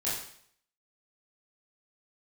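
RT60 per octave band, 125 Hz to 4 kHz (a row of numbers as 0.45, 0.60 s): 0.65, 0.60, 0.60, 0.60, 0.60, 0.60 s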